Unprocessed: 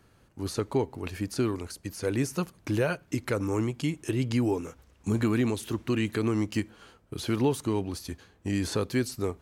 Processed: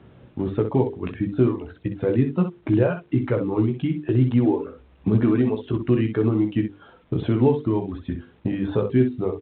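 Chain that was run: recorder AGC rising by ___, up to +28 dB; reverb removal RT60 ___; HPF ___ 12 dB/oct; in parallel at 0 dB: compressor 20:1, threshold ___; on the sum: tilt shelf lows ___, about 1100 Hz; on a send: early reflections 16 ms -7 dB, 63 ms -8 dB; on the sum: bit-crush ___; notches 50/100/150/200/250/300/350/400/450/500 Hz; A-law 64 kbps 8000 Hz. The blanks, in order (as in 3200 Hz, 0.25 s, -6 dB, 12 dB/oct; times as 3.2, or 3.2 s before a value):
11 dB/s, 1.6 s, 83 Hz, -40 dBFS, +8.5 dB, 10-bit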